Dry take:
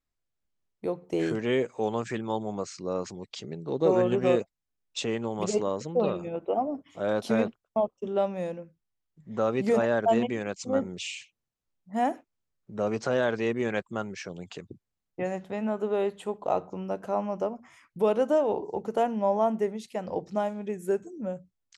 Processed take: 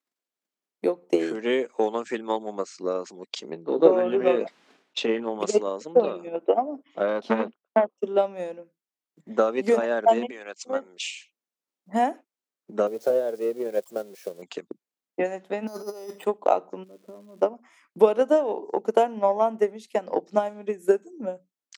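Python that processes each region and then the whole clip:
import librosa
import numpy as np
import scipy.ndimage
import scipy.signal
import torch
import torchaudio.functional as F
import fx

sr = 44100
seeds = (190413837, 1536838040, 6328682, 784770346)

y = fx.chain(x, sr, fx.lowpass(hz=3400.0, slope=12),
    fx.doubler(ms=18.0, db=-9.0),
    fx.sustainer(db_per_s=50.0), at=(3.5, 5.4))
y = fx.chain(y, sr, fx.lowpass(hz=3800.0, slope=12),
    fx.low_shelf(hz=110.0, db=9.0),
    fx.transformer_sat(knee_hz=670.0), at=(6.84, 7.98))
y = fx.chain(y, sr, fx.highpass(hz=970.0, slope=6),
    fx.high_shelf(hz=4100.0, db=-4.0), at=(10.31, 11.03))
y = fx.chain(y, sr, fx.crossing_spikes(level_db=-22.5),
    fx.curve_eq(hz=(130.0, 250.0, 530.0, 960.0, 2600.0, 3900.0, 7700.0), db=(0, -8, 3, -14, -18, -16, -19)), at=(12.87, 14.42))
y = fx.chain(y, sr, fx.over_compress(threshold_db=-36.0, ratio=-1.0),
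    fx.notch(hz=1600.0, q=11.0),
    fx.resample_bad(factor=8, down='filtered', up='hold'), at=(15.67, 16.25))
y = fx.moving_average(y, sr, points=55, at=(16.83, 17.41), fade=0.02)
y = fx.level_steps(y, sr, step_db=11, at=(16.83, 17.41), fade=0.02)
y = fx.dmg_crackle(y, sr, seeds[0], per_s=530.0, level_db=-52.0, at=(16.83, 17.41), fade=0.02)
y = fx.transient(y, sr, attack_db=10, sustain_db=-2)
y = scipy.signal.sosfilt(scipy.signal.butter(4, 240.0, 'highpass', fs=sr, output='sos'), y)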